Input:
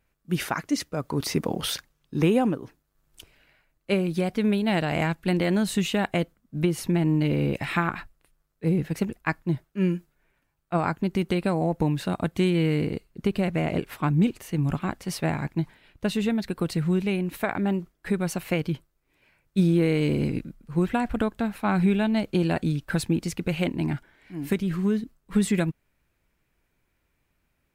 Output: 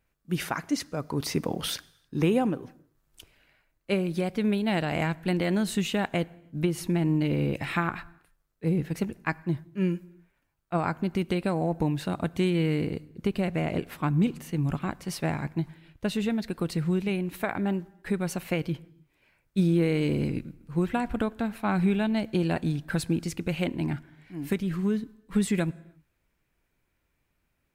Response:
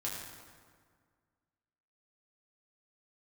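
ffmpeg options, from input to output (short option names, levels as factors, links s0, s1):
-filter_complex "[0:a]asplit=2[s0][s1];[1:a]atrim=start_sample=2205,afade=t=out:st=0.38:d=0.01,atrim=end_sample=17199[s2];[s1][s2]afir=irnorm=-1:irlink=0,volume=0.0891[s3];[s0][s3]amix=inputs=2:normalize=0,volume=0.708"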